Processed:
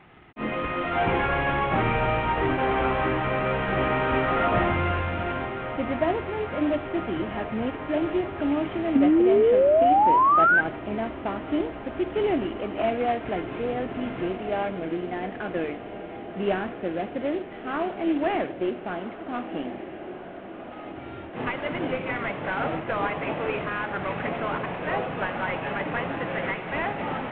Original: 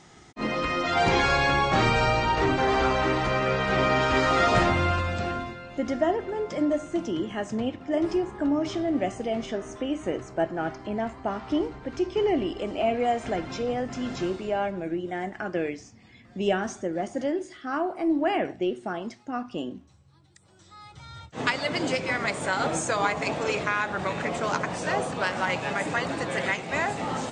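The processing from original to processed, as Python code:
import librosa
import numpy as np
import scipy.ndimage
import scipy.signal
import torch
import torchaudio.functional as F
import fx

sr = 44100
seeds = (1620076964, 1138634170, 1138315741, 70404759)

y = fx.cvsd(x, sr, bps=16000)
y = fx.echo_diffused(y, sr, ms=1409, feedback_pct=75, wet_db=-12.5)
y = fx.spec_paint(y, sr, seeds[0], shape='rise', start_s=8.95, length_s=1.66, low_hz=260.0, high_hz=1600.0, level_db=-18.0)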